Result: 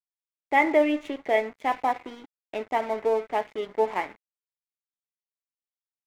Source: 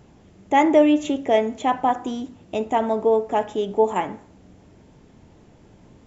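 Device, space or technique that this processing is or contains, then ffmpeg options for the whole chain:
pocket radio on a weak battery: -af "highpass=330,lowpass=3300,aeval=exprs='sgn(val(0))*max(abs(val(0))-0.0133,0)':c=same,equalizer=f=2100:t=o:w=0.36:g=10.5,volume=0.631"

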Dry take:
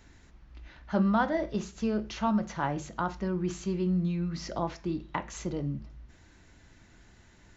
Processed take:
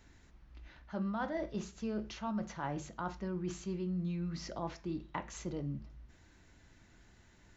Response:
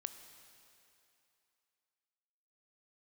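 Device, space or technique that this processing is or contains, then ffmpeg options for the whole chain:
compression on the reversed sound: -af "areverse,acompressor=threshold=0.0398:ratio=6,areverse,volume=0.562"

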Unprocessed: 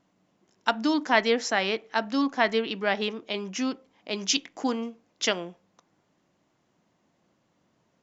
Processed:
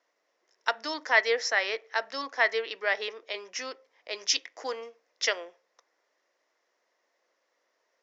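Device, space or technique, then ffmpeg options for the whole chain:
phone speaker on a table: -af "highpass=f=460:w=0.5412,highpass=f=460:w=1.3066,equalizer=f=490:t=q:w=4:g=4,equalizer=f=790:t=q:w=4:g=-4,equalizer=f=1900:t=q:w=4:g=8,equalizer=f=3000:t=q:w=4:g=-3,equalizer=f=5400:t=q:w=4:g=7,lowpass=f=6700:w=0.5412,lowpass=f=6700:w=1.3066,volume=0.708"

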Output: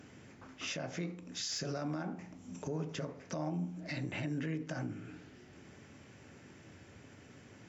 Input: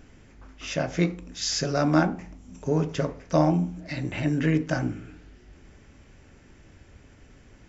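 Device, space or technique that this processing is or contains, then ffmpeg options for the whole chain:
podcast mastering chain: -af "highpass=f=100:w=0.5412,highpass=f=100:w=1.3066,deesser=0.5,acompressor=threshold=0.0112:ratio=2,alimiter=level_in=1.68:limit=0.0631:level=0:latency=1:release=58,volume=0.596" -ar 48000 -c:a libmp3lame -b:a 96k

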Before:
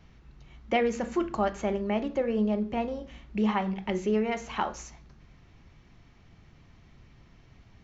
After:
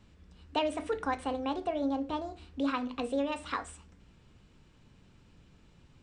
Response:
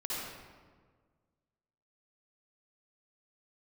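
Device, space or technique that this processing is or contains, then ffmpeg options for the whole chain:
nightcore: -af "asetrate=57330,aresample=44100,volume=0.596"

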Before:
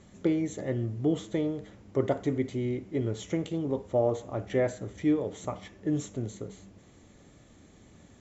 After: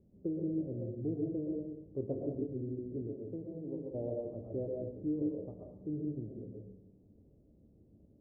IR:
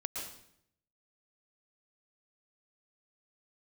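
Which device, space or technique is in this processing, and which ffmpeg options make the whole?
next room: -filter_complex "[0:a]lowpass=f=510:w=0.5412,lowpass=f=510:w=1.3066[s0];[1:a]atrim=start_sample=2205[s1];[s0][s1]afir=irnorm=-1:irlink=0,asettb=1/sr,asplit=3[s2][s3][s4];[s2]atrim=end=3.074[s5];[s3]atrim=start=3.07:end=3.95,asetpts=PTS-STARTPTS,afade=t=in:d=0.004:c=qsin,afade=t=out:st=0.876:d=0.004:c=qsin,lowshelf=f=200:g=-8[s6];[s4]atrim=start=3.946[s7];[s5][s6]acrossfade=d=0.004:c1=hsin:c2=qsin[s8];[s8][s7]acrossfade=d=0.004:c1=qsin:c2=hsin,volume=0.398"

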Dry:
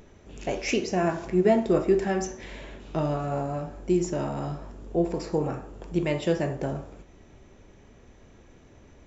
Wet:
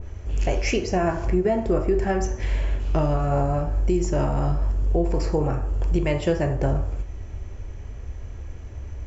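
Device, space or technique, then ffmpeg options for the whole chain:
car stereo with a boomy subwoofer: -af "lowshelf=f=120:t=q:w=1.5:g=13.5,bandreject=f=3700:w=8.3,alimiter=limit=0.119:level=0:latency=1:release=264,adynamicequalizer=threshold=0.00562:dfrequency=2000:dqfactor=0.7:tfrequency=2000:tqfactor=0.7:attack=5:release=100:ratio=0.375:range=2.5:mode=cutabove:tftype=highshelf,volume=2.11"

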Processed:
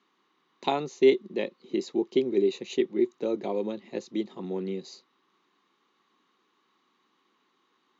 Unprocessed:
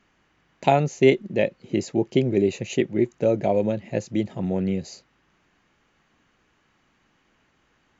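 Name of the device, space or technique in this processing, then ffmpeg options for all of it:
television speaker: -af "highpass=f=210:w=0.5412,highpass=f=210:w=1.3066,equalizer=f=380:t=q:w=4:g=6,equalizer=f=620:t=q:w=4:g=-10,equalizer=f=1100:t=q:w=4:g=10,equalizer=f=1600:t=q:w=4:g=-5,equalizer=f=2500:t=q:w=4:g=-3,equalizer=f=3800:t=q:w=4:g=10,lowpass=f=6700:w=0.5412,lowpass=f=6700:w=1.3066,volume=0.473"

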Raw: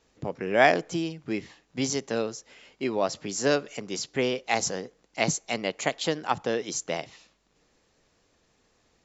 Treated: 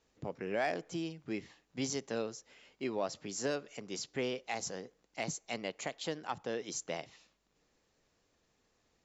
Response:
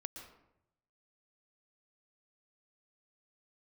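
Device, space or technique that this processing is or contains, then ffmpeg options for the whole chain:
soft clipper into limiter: -af "asoftclip=type=tanh:threshold=0.335,alimiter=limit=0.168:level=0:latency=1:release=397,volume=0.398"

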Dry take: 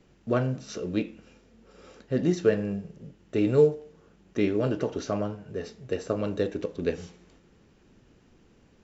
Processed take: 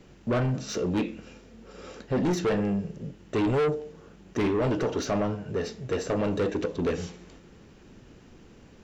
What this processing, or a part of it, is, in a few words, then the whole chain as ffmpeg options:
saturation between pre-emphasis and de-emphasis: -af "highshelf=f=3800:g=10.5,asoftclip=type=tanh:threshold=0.0355,highshelf=f=3800:g=-10.5,volume=2.37"

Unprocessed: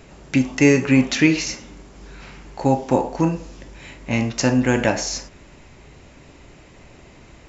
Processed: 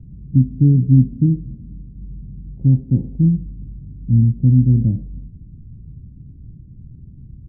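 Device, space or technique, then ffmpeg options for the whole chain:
the neighbour's flat through the wall: -af "lowpass=f=200:w=0.5412,lowpass=f=200:w=1.3066,equalizer=f=110:t=o:w=0.91:g=6,volume=2.51"

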